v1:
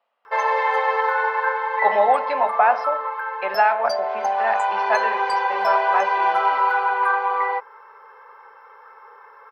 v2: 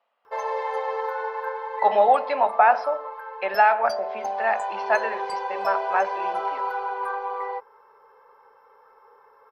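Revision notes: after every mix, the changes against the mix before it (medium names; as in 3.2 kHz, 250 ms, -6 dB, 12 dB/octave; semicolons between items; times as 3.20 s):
background: add peaking EQ 1.9 kHz -14 dB 2.5 oct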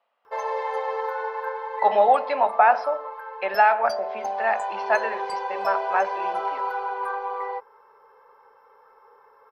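no change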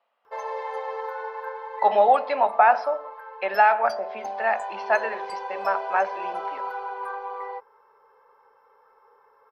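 background -4.0 dB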